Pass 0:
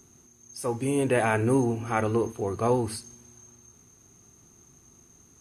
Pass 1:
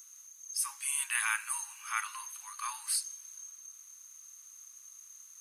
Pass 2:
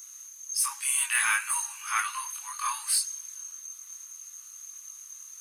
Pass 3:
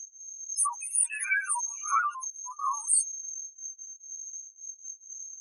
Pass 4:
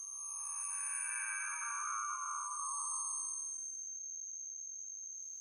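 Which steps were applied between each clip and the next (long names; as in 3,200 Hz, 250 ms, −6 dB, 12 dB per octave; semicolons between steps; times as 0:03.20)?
Butterworth high-pass 980 Hz 72 dB per octave; spectral tilt +4 dB per octave; level −5 dB
multi-voice chorus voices 2, 0.63 Hz, delay 22 ms, depth 2 ms; in parallel at −4.5 dB: soft clipping −32.5 dBFS, distortion −12 dB; on the sum: level +6.5 dB
expanding power law on the bin magnitudes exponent 3.7; all-pass phaser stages 12, 0.41 Hz, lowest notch 520–4,600 Hz; level +4 dB
spectrum smeared in time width 762 ms; Opus 32 kbit/s 48,000 Hz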